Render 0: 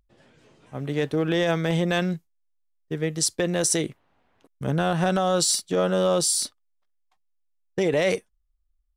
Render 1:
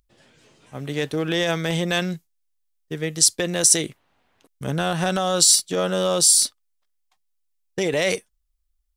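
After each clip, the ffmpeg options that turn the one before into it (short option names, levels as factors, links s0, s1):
-af "highshelf=f=2400:g=10,volume=0.891"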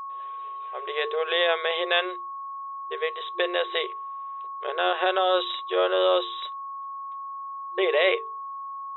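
-af "bandreject=f=50:t=h:w=6,bandreject=f=100:t=h:w=6,bandreject=f=150:t=h:w=6,bandreject=f=200:t=h:w=6,bandreject=f=250:t=h:w=6,bandreject=f=300:t=h:w=6,bandreject=f=350:t=h:w=6,bandreject=f=400:t=h:w=6,bandreject=f=450:t=h:w=6,afftfilt=real='re*between(b*sr/4096,350,3900)':imag='im*between(b*sr/4096,350,3900)':win_size=4096:overlap=0.75,aeval=exprs='val(0)+0.02*sin(2*PI*1100*n/s)':c=same,volume=1.12"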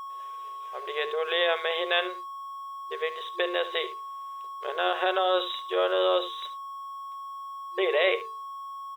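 -filter_complex "[0:a]aecho=1:1:73:0.178,asplit=2[s0][s1];[s1]aeval=exprs='val(0)*gte(abs(val(0)),0.015)':c=same,volume=0.282[s2];[s0][s2]amix=inputs=2:normalize=0,volume=0.596"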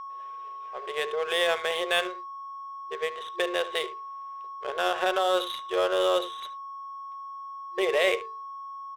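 -af "adynamicsmooth=sensitivity=7.5:basefreq=1900"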